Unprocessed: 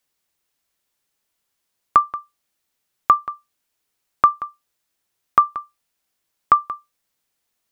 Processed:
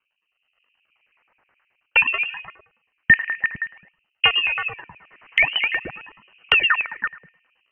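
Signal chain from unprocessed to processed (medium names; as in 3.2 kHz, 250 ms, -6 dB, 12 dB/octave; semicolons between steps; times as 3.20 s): dynamic bell 900 Hz, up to +4 dB, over -26 dBFS, Q 0.84; on a send at -9 dB: reverberation RT60 0.65 s, pre-delay 13 ms; on the sum: decimation with a swept rate 37×, swing 160% 0.54 Hz; peak limiter -8.5 dBFS, peak gain reduction 8.5 dB; bass shelf 300 Hz -7 dB; repeats whose band climbs or falls 113 ms, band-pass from 200 Hz, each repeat 1.4 oct, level -2 dB; LFO low-pass square 9.4 Hz 540–2100 Hz; level rider gain up to 10 dB; frequency inversion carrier 3 kHz; 4.45–6.71 s: three bands compressed up and down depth 70%; trim -1.5 dB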